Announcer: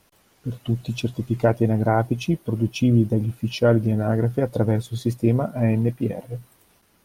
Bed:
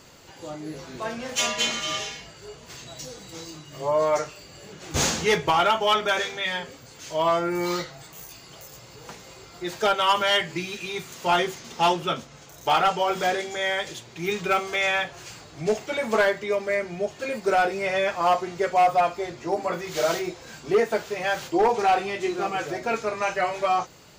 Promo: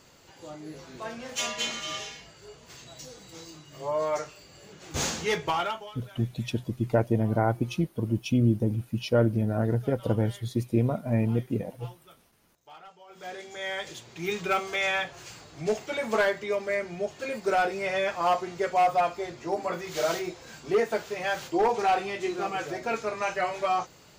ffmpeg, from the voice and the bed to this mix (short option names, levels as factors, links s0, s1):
-filter_complex "[0:a]adelay=5500,volume=0.562[s0];[1:a]volume=8.91,afade=t=out:st=5.52:d=0.4:silence=0.0749894,afade=t=in:st=13.08:d=1.01:silence=0.0562341[s1];[s0][s1]amix=inputs=2:normalize=0"